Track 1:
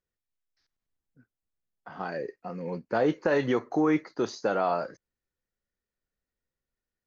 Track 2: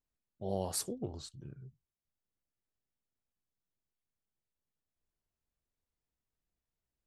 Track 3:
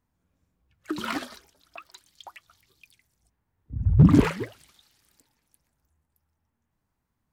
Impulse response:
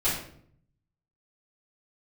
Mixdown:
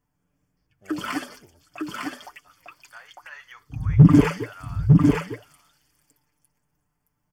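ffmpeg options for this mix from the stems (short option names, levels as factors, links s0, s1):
-filter_complex "[0:a]highpass=f=1200:w=0.5412,highpass=f=1200:w=1.3066,volume=0.398,asplit=2[s0][s1];[s1]volume=0.106[s2];[1:a]adelay=400,volume=0.188[s3];[2:a]aecho=1:1:6.8:0.71,volume=1,asplit=2[s4][s5];[s5]volume=0.708[s6];[s2][s6]amix=inputs=2:normalize=0,aecho=0:1:903:1[s7];[s0][s3][s4][s7]amix=inputs=4:normalize=0,asuperstop=centerf=3900:order=4:qfactor=4.4"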